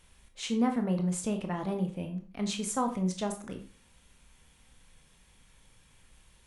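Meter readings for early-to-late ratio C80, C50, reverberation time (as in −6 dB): 15.0 dB, 10.5 dB, 0.40 s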